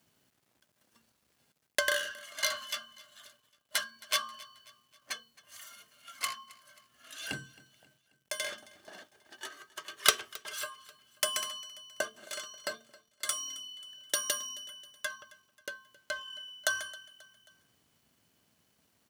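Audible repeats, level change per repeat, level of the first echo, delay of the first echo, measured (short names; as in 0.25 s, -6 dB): 3, -6.0 dB, -21.5 dB, 0.268 s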